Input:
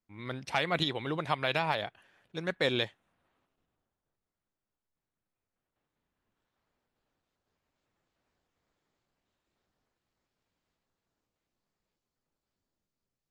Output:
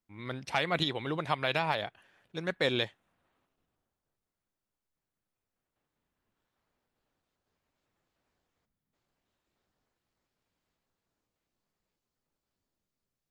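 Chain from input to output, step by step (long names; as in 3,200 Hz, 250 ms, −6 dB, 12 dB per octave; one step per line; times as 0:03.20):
gain on a spectral selection 0:08.65–0:08.93, 270–10,000 Hz −13 dB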